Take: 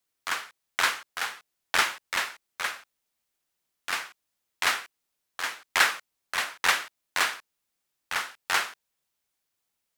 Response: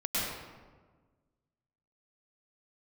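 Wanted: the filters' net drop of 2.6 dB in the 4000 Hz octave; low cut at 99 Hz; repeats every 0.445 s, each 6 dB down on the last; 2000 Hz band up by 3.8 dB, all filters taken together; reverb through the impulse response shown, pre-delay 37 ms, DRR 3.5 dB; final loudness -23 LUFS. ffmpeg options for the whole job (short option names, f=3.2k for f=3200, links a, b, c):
-filter_complex "[0:a]highpass=99,equalizer=f=2k:t=o:g=6,equalizer=f=4k:t=o:g=-6,aecho=1:1:445|890|1335|1780|2225|2670:0.501|0.251|0.125|0.0626|0.0313|0.0157,asplit=2[a][b];[1:a]atrim=start_sample=2205,adelay=37[c];[b][c]afir=irnorm=-1:irlink=0,volume=-12dB[d];[a][d]amix=inputs=2:normalize=0,volume=1.5dB"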